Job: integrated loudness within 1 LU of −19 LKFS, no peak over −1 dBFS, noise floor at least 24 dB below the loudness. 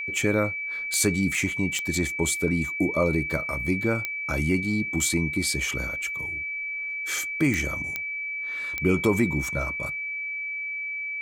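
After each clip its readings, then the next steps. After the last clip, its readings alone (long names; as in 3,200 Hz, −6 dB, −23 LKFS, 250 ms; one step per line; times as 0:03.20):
number of clicks 6; interfering tone 2,300 Hz; level of the tone −29 dBFS; integrated loudness −26.0 LKFS; sample peak −10.0 dBFS; target loudness −19.0 LKFS
→ click removal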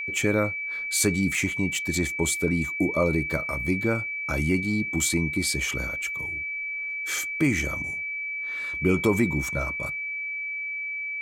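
number of clicks 0; interfering tone 2,300 Hz; level of the tone −29 dBFS
→ notch filter 2,300 Hz, Q 30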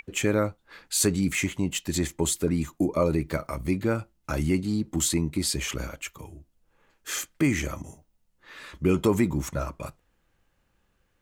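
interfering tone none found; integrated loudness −27.0 LKFS; sample peak −10.5 dBFS; target loudness −19.0 LKFS
→ level +8 dB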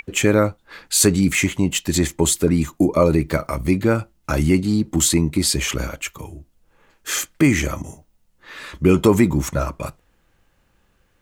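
integrated loudness −19.0 LKFS; sample peak −2.5 dBFS; background noise floor −63 dBFS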